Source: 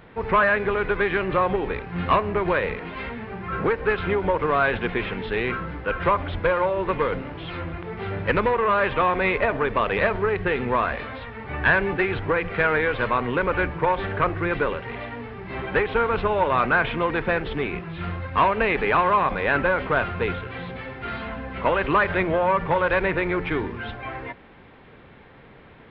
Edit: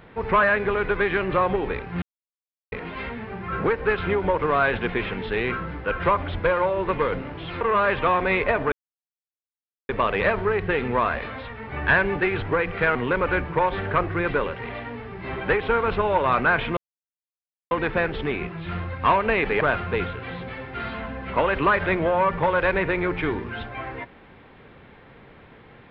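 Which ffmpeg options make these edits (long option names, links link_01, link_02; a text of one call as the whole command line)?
ffmpeg -i in.wav -filter_complex "[0:a]asplit=8[link_01][link_02][link_03][link_04][link_05][link_06][link_07][link_08];[link_01]atrim=end=2.02,asetpts=PTS-STARTPTS,afade=type=out:start_time=2.016:duration=0.004:curve=hsin[link_09];[link_02]atrim=start=2.02:end=2.72,asetpts=PTS-STARTPTS,volume=0[link_10];[link_03]atrim=start=2.72:end=7.612,asetpts=PTS-STARTPTS,afade=type=in:duration=0.004:curve=hsin[link_11];[link_04]atrim=start=8.548:end=9.66,asetpts=PTS-STARTPTS,afade=type=out:start_time=1.108:duration=0.004:curve=hsin,apad=pad_dur=1.17[link_12];[link_05]atrim=start=9.66:end=12.722,asetpts=PTS-STARTPTS,afade=type=in:duration=0.004:curve=hsin[link_13];[link_06]atrim=start=13.208:end=17.03,asetpts=PTS-STARTPTS,afade=type=out:start_time=3.818:duration=0.004:curve=hsin,apad=pad_dur=0.94[link_14];[link_07]atrim=start=17.03:end=18.932,asetpts=PTS-STARTPTS,afade=type=in:duration=0.004:curve=hsin[link_15];[link_08]atrim=start=19.888[link_16];[link_09][link_10][link_11]concat=n=3:v=0:a=1[link_17];[link_12][link_13]concat=n=2:v=0:a=1[link_18];[link_17][link_18]acrossfade=duration=0.004:curve1=hsin:curve2=hsin[link_19];[link_14][link_15]concat=n=2:v=0:a=1[link_20];[link_19][link_20]acrossfade=duration=0.004:curve1=hsin:curve2=hsin[link_21];[link_21][link_16]acrossfade=duration=0.004:curve1=hsin:curve2=hsin" out.wav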